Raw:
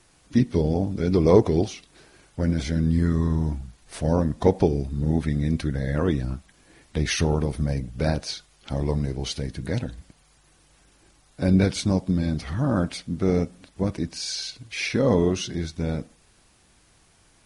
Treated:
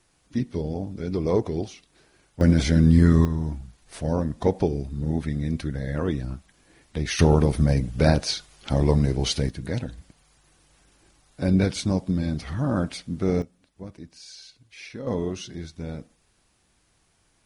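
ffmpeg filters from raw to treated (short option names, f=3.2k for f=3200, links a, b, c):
-af "asetnsamples=n=441:p=0,asendcmd='2.41 volume volume 5.5dB;3.25 volume volume -3dB;7.19 volume volume 5dB;9.49 volume volume -1.5dB;13.42 volume volume -14dB;15.07 volume volume -7dB',volume=-6.5dB"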